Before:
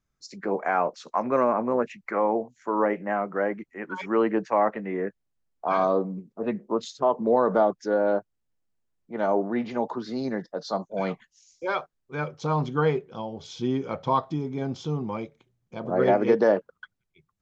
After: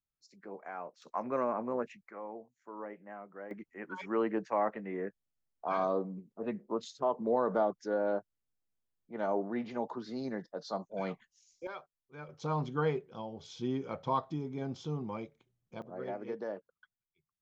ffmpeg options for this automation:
ffmpeg -i in.wav -af "asetnsamples=nb_out_samples=441:pad=0,asendcmd='1.02 volume volume -10dB;2.03 volume volume -20dB;3.51 volume volume -8.5dB;11.67 volume volume -17dB;12.29 volume volume -8dB;15.82 volume volume -19dB',volume=-18.5dB" out.wav

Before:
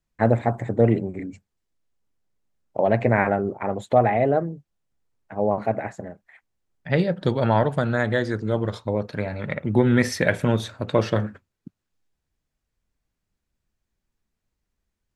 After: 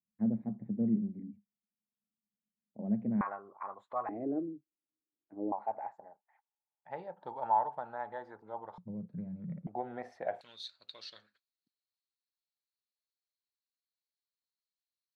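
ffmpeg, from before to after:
ffmpeg -i in.wav -af "asetnsamples=nb_out_samples=441:pad=0,asendcmd='3.21 bandpass f 1100;4.09 bandpass f 310;5.52 bandpass f 860;8.78 bandpass f 180;9.67 bandpass f 730;10.41 bandpass f 4200',bandpass=frequency=210:width_type=q:width=10:csg=0" out.wav

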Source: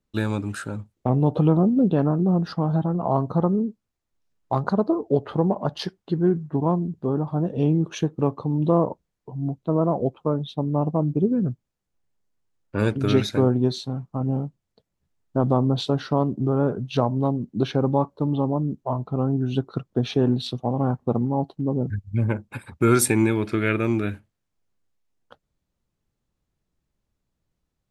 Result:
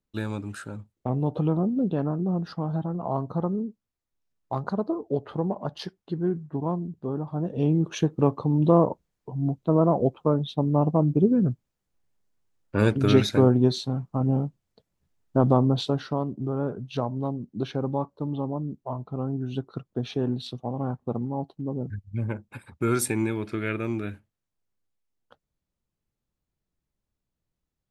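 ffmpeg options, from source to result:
ffmpeg -i in.wav -af "volume=1dB,afade=type=in:start_time=7.29:duration=0.88:silence=0.446684,afade=type=out:start_time=15.47:duration=0.74:silence=0.421697" out.wav

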